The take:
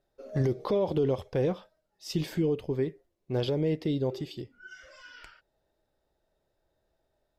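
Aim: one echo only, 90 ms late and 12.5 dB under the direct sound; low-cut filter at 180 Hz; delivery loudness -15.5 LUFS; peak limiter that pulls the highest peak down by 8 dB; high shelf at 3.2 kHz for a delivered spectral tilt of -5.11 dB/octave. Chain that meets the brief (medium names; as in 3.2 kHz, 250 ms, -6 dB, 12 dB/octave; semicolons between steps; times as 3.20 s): high-pass 180 Hz; treble shelf 3.2 kHz +5 dB; peak limiter -25.5 dBFS; delay 90 ms -12.5 dB; trim +20.5 dB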